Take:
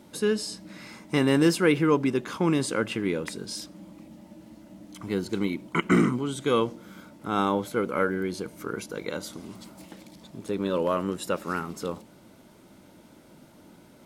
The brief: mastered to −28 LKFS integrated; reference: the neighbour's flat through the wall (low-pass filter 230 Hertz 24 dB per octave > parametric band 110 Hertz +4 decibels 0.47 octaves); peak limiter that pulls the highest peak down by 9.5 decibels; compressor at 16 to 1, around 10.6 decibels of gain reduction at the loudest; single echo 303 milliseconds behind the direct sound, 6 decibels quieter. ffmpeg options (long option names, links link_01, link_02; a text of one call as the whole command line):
ffmpeg -i in.wav -af "acompressor=threshold=-26dB:ratio=16,alimiter=limit=-23dB:level=0:latency=1,lowpass=frequency=230:width=0.5412,lowpass=frequency=230:width=1.3066,equalizer=frequency=110:width_type=o:width=0.47:gain=4,aecho=1:1:303:0.501,volume=13.5dB" out.wav